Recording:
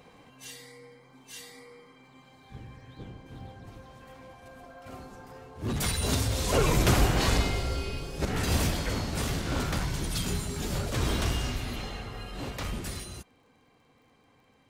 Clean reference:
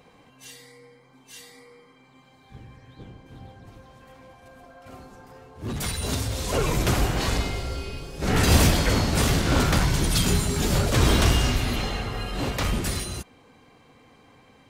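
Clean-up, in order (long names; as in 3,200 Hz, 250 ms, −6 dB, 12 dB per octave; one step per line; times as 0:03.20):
click removal
level correction +9 dB, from 0:08.25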